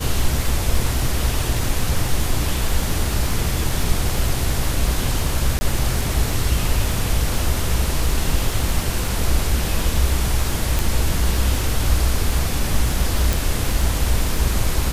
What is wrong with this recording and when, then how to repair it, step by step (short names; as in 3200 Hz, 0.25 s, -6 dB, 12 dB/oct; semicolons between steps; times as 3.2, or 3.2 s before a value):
crackle 21/s -23 dBFS
5.59–5.61 gap 20 ms
10.79 pop
13.33 pop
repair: de-click; interpolate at 5.59, 20 ms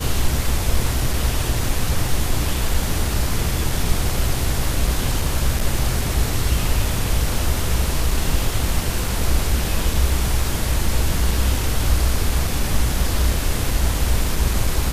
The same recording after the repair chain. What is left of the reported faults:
none